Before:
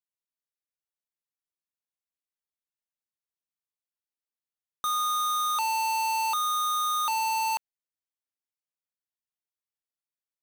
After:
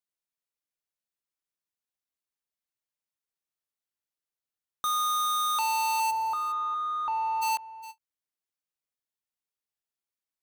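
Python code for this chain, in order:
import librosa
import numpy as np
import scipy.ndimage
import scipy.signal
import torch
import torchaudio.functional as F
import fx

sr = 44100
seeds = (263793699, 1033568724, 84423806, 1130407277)

p1 = fx.lowpass(x, sr, hz=1300.0, slope=12, at=(6.1, 7.41), fade=0.02)
p2 = p1 + fx.echo_single(p1, sr, ms=410, db=-15.0, dry=0)
y = fx.end_taper(p2, sr, db_per_s=580.0)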